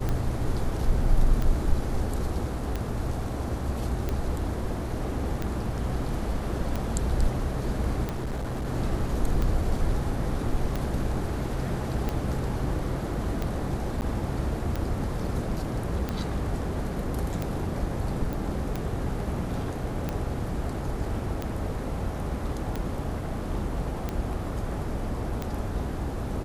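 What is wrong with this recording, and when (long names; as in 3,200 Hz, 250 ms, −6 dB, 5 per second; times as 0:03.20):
scratch tick 45 rpm −16 dBFS
0:08.03–0:08.67: clipping −27.5 dBFS
0:14.01–0:14.02: drop-out 9.6 ms
0:18.33: click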